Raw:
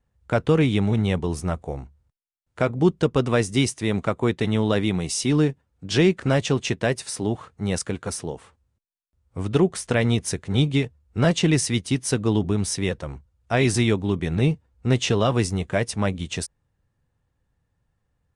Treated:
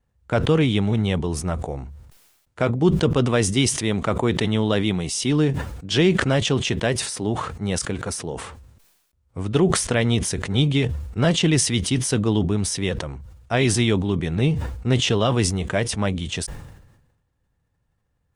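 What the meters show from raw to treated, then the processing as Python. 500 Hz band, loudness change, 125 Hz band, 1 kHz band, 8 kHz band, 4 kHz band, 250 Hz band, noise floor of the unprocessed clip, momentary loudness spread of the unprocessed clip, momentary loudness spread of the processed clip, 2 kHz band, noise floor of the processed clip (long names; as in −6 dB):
+0.5 dB, +1.5 dB, +1.5 dB, +1.5 dB, +4.0 dB, +4.5 dB, +1.0 dB, −75 dBFS, 10 LU, 11 LU, +1.5 dB, −70 dBFS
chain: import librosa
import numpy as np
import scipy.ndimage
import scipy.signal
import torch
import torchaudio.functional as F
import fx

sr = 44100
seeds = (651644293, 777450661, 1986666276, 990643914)

y = fx.dynamic_eq(x, sr, hz=3200.0, q=5.7, threshold_db=-48.0, ratio=4.0, max_db=7)
y = fx.sustainer(y, sr, db_per_s=54.0)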